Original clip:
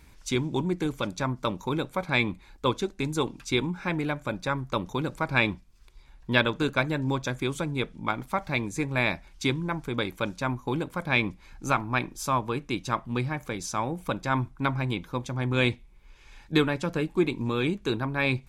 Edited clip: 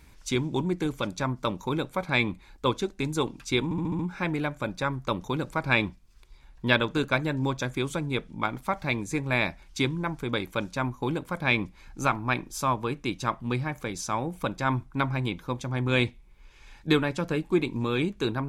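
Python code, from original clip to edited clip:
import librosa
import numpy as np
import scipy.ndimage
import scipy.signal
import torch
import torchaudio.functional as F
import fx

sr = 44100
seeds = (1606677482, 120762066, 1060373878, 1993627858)

y = fx.edit(x, sr, fx.stutter(start_s=3.64, slice_s=0.07, count=6), tone=tone)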